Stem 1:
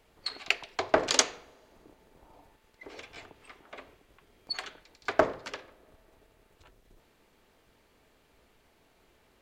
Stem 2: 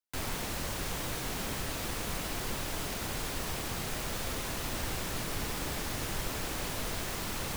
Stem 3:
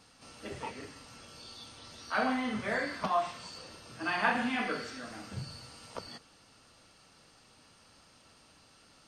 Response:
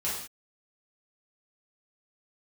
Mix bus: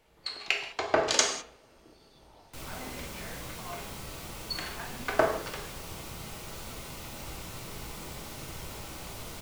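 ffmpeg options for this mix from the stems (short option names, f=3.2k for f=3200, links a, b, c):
-filter_complex "[0:a]volume=-5dB,asplit=2[a][b];[b]volume=-4.5dB[c];[1:a]bandreject=f=1.7k:w=6.9,adelay=2400,volume=-11.5dB,asplit=2[d][e];[e]volume=-4dB[f];[2:a]adelay=550,volume=-15dB[g];[3:a]atrim=start_sample=2205[h];[c][f]amix=inputs=2:normalize=0[i];[i][h]afir=irnorm=-1:irlink=0[j];[a][d][g][j]amix=inputs=4:normalize=0"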